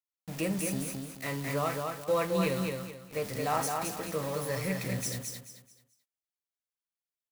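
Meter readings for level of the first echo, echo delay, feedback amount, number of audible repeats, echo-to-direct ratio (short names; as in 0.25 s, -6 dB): -4.0 dB, 0.217 s, 30%, 3, -3.5 dB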